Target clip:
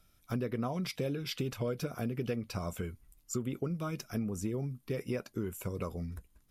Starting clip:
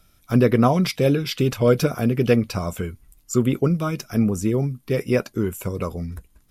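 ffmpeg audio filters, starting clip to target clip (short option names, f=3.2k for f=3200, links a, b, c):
-af "acompressor=threshold=-22dB:ratio=6,volume=-9dB"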